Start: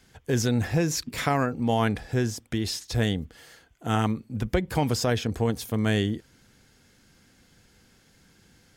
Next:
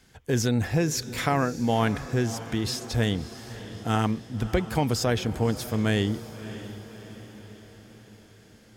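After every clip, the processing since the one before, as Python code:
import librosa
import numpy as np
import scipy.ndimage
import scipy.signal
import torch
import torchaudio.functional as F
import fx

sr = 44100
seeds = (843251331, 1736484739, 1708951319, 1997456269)

y = fx.echo_diffused(x, sr, ms=609, feedback_pct=55, wet_db=-14.0)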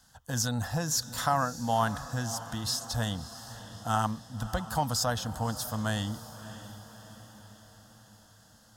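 y = fx.low_shelf(x, sr, hz=430.0, db=-8.5)
y = fx.fixed_phaser(y, sr, hz=950.0, stages=4)
y = y * 10.0 ** (3.0 / 20.0)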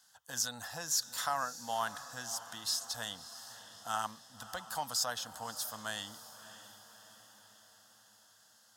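y = fx.highpass(x, sr, hz=1400.0, slope=6)
y = y * 10.0 ** (-2.0 / 20.0)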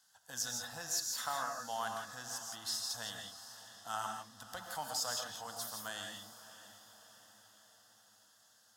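y = fx.rev_gated(x, sr, seeds[0], gate_ms=190, shape='rising', drr_db=2.5)
y = y * 10.0 ** (-4.5 / 20.0)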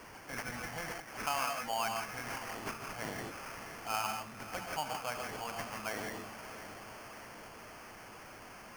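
y = x + 0.5 * 10.0 ** (-50.0 / 20.0) * np.sign(x)
y = fx.env_lowpass_down(y, sr, base_hz=2400.0, full_db=-33.0)
y = fx.sample_hold(y, sr, seeds[1], rate_hz=3800.0, jitter_pct=0)
y = y * 10.0 ** (3.5 / 20.0)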